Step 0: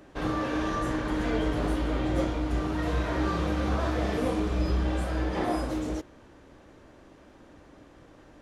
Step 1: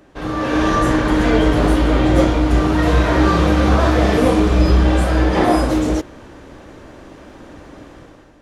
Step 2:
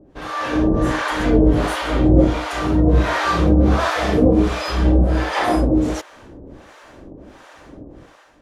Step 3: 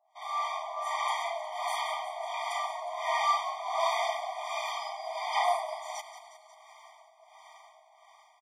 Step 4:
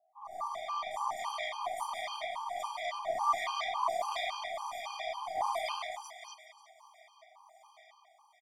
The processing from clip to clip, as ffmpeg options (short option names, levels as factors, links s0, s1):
-af "dynaudnorm=f=130:g=7:m=3.55,volume=1.41"
-filter_complex "[0:a]acrossover=split=630[s0][s1];[s0]aeval=exprs='val(0)*(1-1/2+1/2*cos(2*PI*1.4*n/s))':c=same[s2];[s1]aeval=exprs='val(0)*(1-1/2-1/2*cos(2*PI*1.4*n/s))':c=same[s3];[s2][s3]amix=inputs=2:normalize=0,volume=1.33"
-filter_complex "[0:a]asplit=2[s0][s1];[s1]asplit=8[s2][s3][s4][s5][s6][s7][s8][s9];[s2]adelay=180,afreqshift=-87,volume=0.282[s10];[s3]adelay=360,afreqshift=-174,volume=0.178[s11];[s4]adelay=540,afreqshift=-261,volume=0.112[s12];[s5]adelay=720,afreqshift=-348,volume=0.0708[s13];[s6]adelay=900,afreqshift=-435,volume=0.0442[s14];[s7]adelay=1080,afreqshift=-522,volume=0.0279[s15];[s8]adelay=1260,afreqshift=-609,volume=0.0176[s16];[s9]adelay=1440,afreqshift=-696,volume=0.0111[s17];[s10][s11][s12][s13][s14][s15][s16][s17]amix=inputs=8:normalize=0[s18];[s0][s18]amix=inputs=2:normalize=0,afftfilt=real='re*eq(mod(floor(b*sr/1024/620),2),1)':imag='im*eq(mod(floor(b*sr/1024/620),2),1)':win_size=1024:overlap=0.75,volume=0.531"
-filter_complex "[0:a]aeval=exprs='0.168*(cos(1*acos(clip(val(0)/0.168,-1,1)))-cos(1*PI/2))+0.0106*(cos(3*acos(clip(val(0)/0.168,-1,1)))-cos(3*PI/2))+0.00299*(cos(6*acos(clip(val(0)/0.168,-1,1)))-cos(6*PI/2))+0.00266*(cos(7*acos(clip(val(0)/0.168,-1,1)))-cos(7*PI/2))+0.00299*(cos(8*acos(clip(val(0)/0.168,-1,1)))-cos(8*PI/2))':c=same,acrossover=split=1300|5800[s0][s1][s2];[s2]adelay=90[s3];[s1]adelay=330[s4];[s0][s4][s3]amix=inputs=3:normalize=0,afftfilt=real='re*gt(sin(2*PI*3.6*pts/sr)*(1-2*mod(floor(b*sr/1024/810),2)),0)':imag='im*gt(sin(2*PI*3.6*pts/sr)*(1-2*mod(floor(b*sr/1024/810),2)),0)':win_size=1024:overlap=0.75,volume=1.5"